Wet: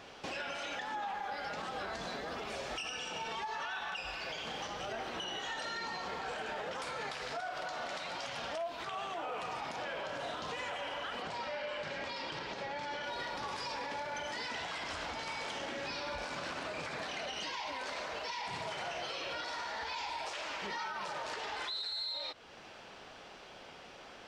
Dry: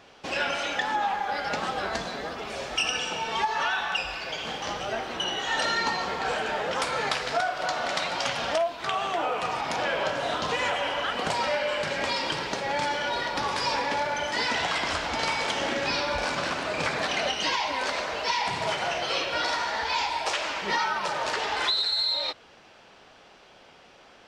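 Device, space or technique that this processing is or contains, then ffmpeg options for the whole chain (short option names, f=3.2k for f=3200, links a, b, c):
stacked limiters: -filter_complex "[0:a]alimiter=limit=-20dB:level=0:latency=1:release=396,alimiter=level_in=2.5dB:limit=-24dB:level=0:latency=1:release=83,volume=-2.5dB,alimiter=level_in=8.5dB:limit=-24dB:level=0:latency=1:release=331,volume=-8.5dB,asettb=1/sr,asplit=3[a][b][c];[a]atrim=end=11.224[d];[b]atrim=start=11.22:end=13.04,asetpts=PTS-STARTPTS,afade=t=in:d=0.004:c=qsin,afade=t=out:st=1.816:d=0.004:c=qsin,lowpass=5.7k[e];[c]atrim=start=13.036[f];[d][e]acrossfade=d=0.004:c1=hsin:c2=qsin[g];[g][f]acrossfade=d=0.004:c1=qsin:c2=hsin,volume=1dB"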